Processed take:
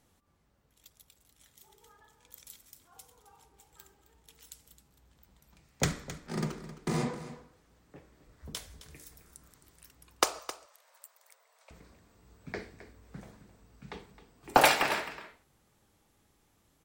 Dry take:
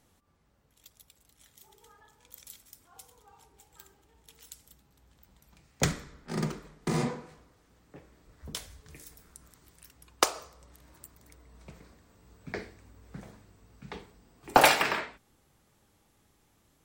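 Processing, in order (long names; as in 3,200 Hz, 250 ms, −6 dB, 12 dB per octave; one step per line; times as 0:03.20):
0:10.39–0:11.71: Butterworth high-pass 520 Hz 48 dB per octave
single-tap delay 264 ms −14 dB
level −2 dB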